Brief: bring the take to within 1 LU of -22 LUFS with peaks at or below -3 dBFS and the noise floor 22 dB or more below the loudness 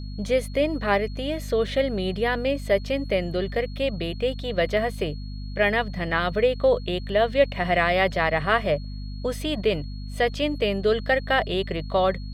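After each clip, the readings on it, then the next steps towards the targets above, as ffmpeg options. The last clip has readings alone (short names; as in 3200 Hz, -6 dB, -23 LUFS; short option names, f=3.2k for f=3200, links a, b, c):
hum 50 Hz; harmonics up to 250 Hz; hum level -31 dBFS; steady tone 4300 Hz; tone level -48 dBFS; loudness -24.5 LUFS; peak -6.5 dBFS; loudness target -22.0 LUFS
-> -af "bandreject=f=50:t=h:w=4,bandreject=f=100:t=h:w=4,bandreject=f=150:t=h:w=4,bandreject=f=200:t=h:w=4,bandreject=f=250:t=h:w=4"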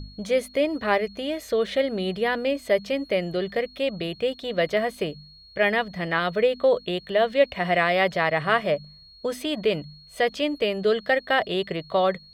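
hum none; steady tone 4300 Hz; tone level -48 dBFS
-> -af "bandreject=f=4.3k:w=30"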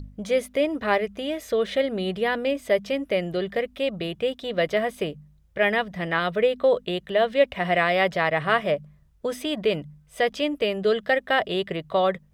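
steady tone none; loudness -24.5 LUFS; peak -7.0 dBFS; loudness target -22.0 LUFS
-> -af "volume=2.5dB"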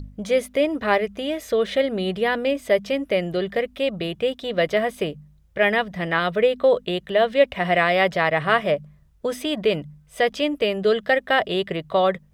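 loudness -22.0 LUFS; peak -4.5 dBFS; noise floor -55 dBFS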